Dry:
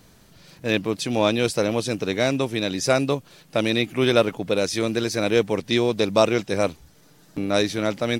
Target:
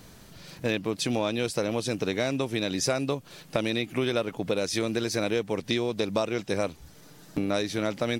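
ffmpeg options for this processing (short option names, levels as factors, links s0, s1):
-af "acompressor=threshold=0.0447:ratio=6,volume=1.41"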